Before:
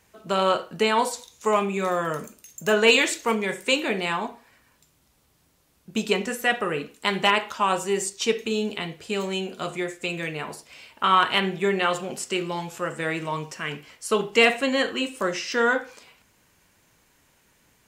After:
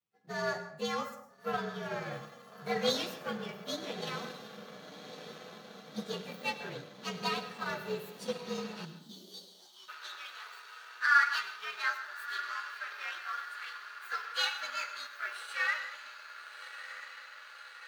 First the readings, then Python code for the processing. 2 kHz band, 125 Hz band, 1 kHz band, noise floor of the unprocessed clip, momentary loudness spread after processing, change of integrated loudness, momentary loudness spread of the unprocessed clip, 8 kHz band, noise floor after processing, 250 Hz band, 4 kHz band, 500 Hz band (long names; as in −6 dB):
−7.5 dB, −12.0 dB, −11.5 dB, −64 dBFS, 17 LU, −11.5 dB, 12 LU, −15.0 dB, −55 dBFS, −15.0 dB, −11.0 dB, −15.5 dB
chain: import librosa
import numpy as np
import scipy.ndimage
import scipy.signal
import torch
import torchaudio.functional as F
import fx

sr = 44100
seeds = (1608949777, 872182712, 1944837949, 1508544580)

p1 = fx.partial_stretch(x, sr, pct=116)
p2 = 10.0 ** (-21.0 / 20.0) * np.tanh(p1 / 10.0 ** (-21.0 / 20.0))
p3 = p1 + F.gain(torch.from_numpy(p2), -7.5).numpy()
p4 = fx.low_shelf(p3, sr, hz=280.0, db=-4.5)
p5 = p4 + fx.echo_diffused(p4, sr, ms=1281, feedback_pct=75, wet_db=-9, dry=0)
p6 = fx.spec_box(p5, sr, start_s=8.85, length_s=1.04, low_hz=380.0, high_hz=2900.0, gain_db=-26)
p7 = fx.peak_eq(p6, sr, hz=12000.0, db=-12.0, octaves=0.46)
p8 = fx.power_curve(p7, sr, exponent=1.4)
p9 = scipy.signal.sosfilt(scipy.signal.butter(2, 93.0, 'highpass', fs=sr, output='sos'), p8)
p10 = fx.filter_sweep_highpass(p9, sr, from_hz=120.0, to_hz=1400.0, start_s=8.69, end_s=9.94, q=3.2)
p11 = fx.rev_plate(p10, sr, seeds[0], rt60_s=0.57, hf_ratio=0.6, predelay_ms=90, drr_db=10.5)
y = F.gain(torch.from_numpy(p11), -8.5).numpy()